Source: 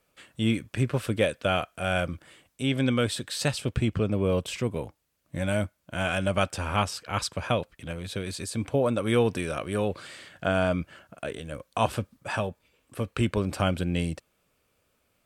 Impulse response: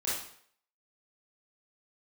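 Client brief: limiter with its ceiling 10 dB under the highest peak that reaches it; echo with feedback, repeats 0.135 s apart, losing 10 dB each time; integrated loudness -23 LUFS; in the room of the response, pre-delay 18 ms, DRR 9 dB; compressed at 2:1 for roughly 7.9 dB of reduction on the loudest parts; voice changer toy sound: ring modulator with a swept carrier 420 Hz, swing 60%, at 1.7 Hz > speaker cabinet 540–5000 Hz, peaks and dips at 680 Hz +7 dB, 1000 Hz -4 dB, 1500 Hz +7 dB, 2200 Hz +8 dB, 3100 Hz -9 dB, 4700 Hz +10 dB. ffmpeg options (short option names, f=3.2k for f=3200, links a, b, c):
-filter_complex "[0:a]acompressor=threshold=-34dB:ratio=2,alimiter=level_in=1dB:limit=-24dB:level=0:latency=1,volume=-1dB,aecho=1:1:135|270|405|540:0.316|0.101|0.0324|0.0104,asplit=2[a][b];[1:a]atrim=start_sample=2205,adelay=18[c];[b][c]afir=irnorm=-1:irlink=0,volume=-15dB[d];[a][d]amix=inputs=2:normalize=0,aeval=exprs='val(0)*sin(2*PI*420*n/s+420*0.6/1.7*sin(2*PI*1.7*n/s))':c=same,highpass=540,equalizer=f=680:t=q:w=4:g=7,equalizer=f=1k:t=q:w=4:g=-4,equalizer=f=1.5k:t=q:w=4:g=7,equalizer=f=2.2k:t=q:w=4:g=8,equalizer=f=3.1k:t=q:w=4:g=-9,equalizer=f=4.7k:t=q:w=4:g=10,lowpass=f=5k:w=0.5412,lowpass=f=5k:w=1.3066,volume=16.5dB"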